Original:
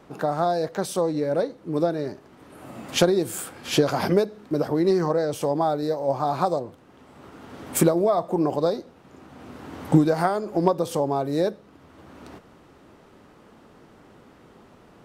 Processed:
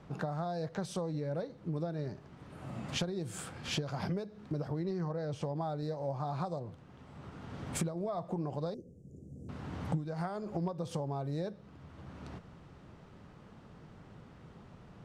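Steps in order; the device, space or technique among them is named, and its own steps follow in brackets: 8.74–9.49 elliptic band-stop 470–7100 Hz, stop band 40 dB; jukebox (LPF 7200 Hz 12 dB/oct; resonant low shelf 210 Hz +8 dB, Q 1.5; compressor 5:1, threshold -28 dBFS, peak gain reduction 20 dB); 4.84–5.56 air absorption 57 m; gain -5.5 dB

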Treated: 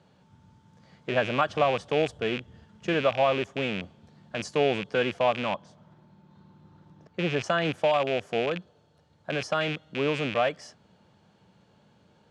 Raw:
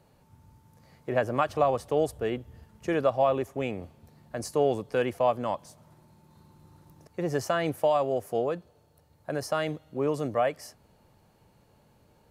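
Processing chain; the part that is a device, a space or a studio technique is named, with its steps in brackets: 5.49–7.44 LPF 2400 Hz 6 dB/oct; car door speaker with a rattle (rattling part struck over -38 dBFS, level -24 dBFS; speaker cabinet 92–7200 Hz, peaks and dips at 190 Hz +7 dB, 1500 Hz +5 dB, 3300 Hz +8 dB)

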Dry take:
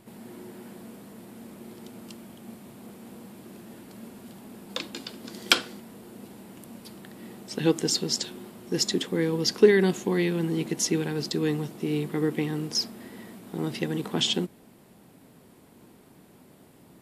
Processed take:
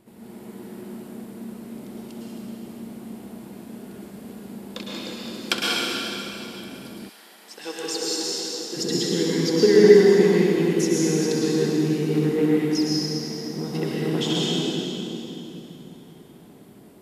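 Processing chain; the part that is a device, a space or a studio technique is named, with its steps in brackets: tunnel (flutter echo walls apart 11.1 m, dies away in 0.33 s; reverb RT60 3.2 s, pre-delay 0.102 s, DRR -6.5 dB); 7.08–8.76 HPF 1000 Hz -> 450 Hz 12 dB/oct; bell 330 Hz +4 dB 1.5 oct; gain -5 dB

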